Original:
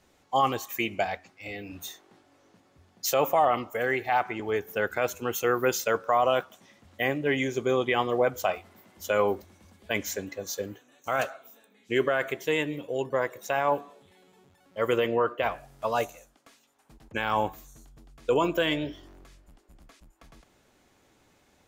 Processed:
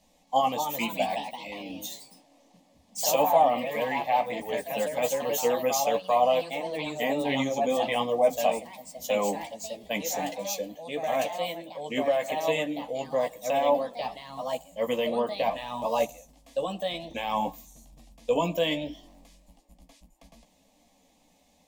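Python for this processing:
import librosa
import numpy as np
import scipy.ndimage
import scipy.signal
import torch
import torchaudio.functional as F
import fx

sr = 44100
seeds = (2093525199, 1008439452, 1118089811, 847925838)

y = fx.chorus_voices(x, sr, voices=6, hz=0.52, base_ms=14, depth_ms=3.9, mix_pct=35)
y = fx.echo_pitch(y, sr, ms=272, semitones=2, count=3, db_per_echo=-6.0)
y = fx.fixed_phaser(y, sr, hz=380.0, stages=6)
y = y * librosa.db_to_amplitude(5.0)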